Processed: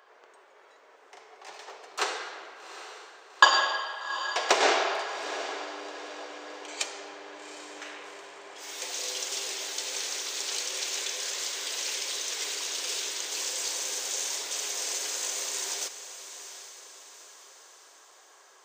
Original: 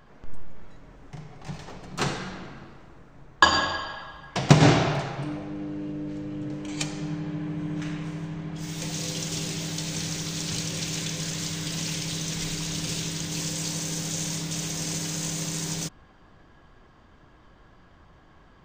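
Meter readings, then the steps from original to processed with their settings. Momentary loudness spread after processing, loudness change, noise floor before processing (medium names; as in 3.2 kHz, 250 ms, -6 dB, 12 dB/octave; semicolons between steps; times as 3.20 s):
19 LU, -1.5 dB, -55 dBFS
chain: Chebyshev high-pass 400 Hz, order 4; bass shelf 480 Hz -5 dB; on a send: echo that smears into a reverb 793 ms, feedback 48%, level -11.5 dB; on the sum: trim +1 dB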